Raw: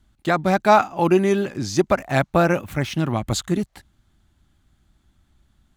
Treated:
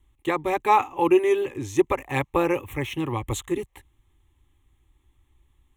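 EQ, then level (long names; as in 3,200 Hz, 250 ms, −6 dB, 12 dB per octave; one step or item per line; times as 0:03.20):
phaser with its sweep stopped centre 980 Hz, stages 8
0.0 dB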